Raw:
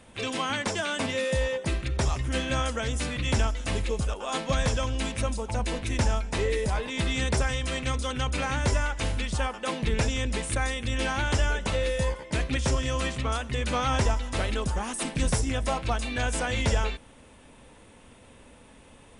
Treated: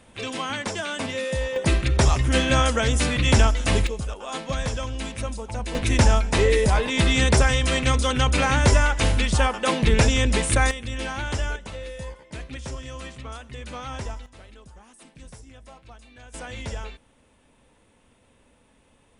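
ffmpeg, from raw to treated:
ffmpeg -i in.wav -af "asetnsamples=nb_out_samples=441:pad=0,asendcmd='1.56 volume volume 8dB;3.87 volume volume -1.5dB;5.75 volume volume 8dB;10.71 volume volume -2dB;11.56 volume volume -8.5dB;14.26 volume volume -19dB;16.34 volume volume -8dB',volume=0dB" out.wav

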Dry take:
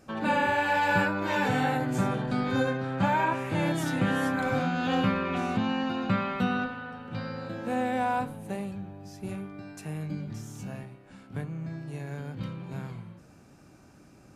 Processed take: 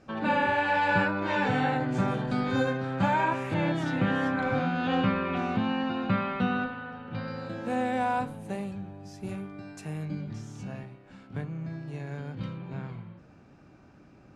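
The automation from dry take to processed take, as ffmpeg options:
ffmpeg -i in.wav -af "asetnsamples=nb_out_samples=441:pad=0,asendcmd='2.08 lowpass f 8900;3.54 lowpass f 3900;7.28 lowpass f 9500;10.05 lowpass f 5700;12.58 lowpass f 3500',lowpass=4600" out.wav

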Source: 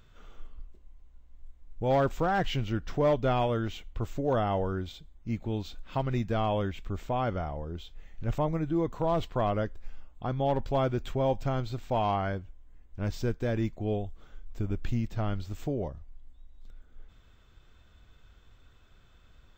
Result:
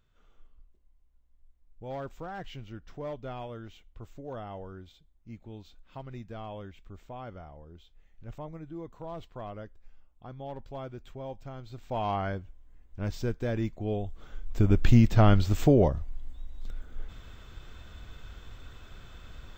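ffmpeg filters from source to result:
ffmpeg -i in.wav -af "volume=11.5dB,afade=type=in:start_time=11.61:duration=0.59:silence=0.266073,afade=type=in:start_time=13.95:duration=1.02:silence=0.237137" out.wav

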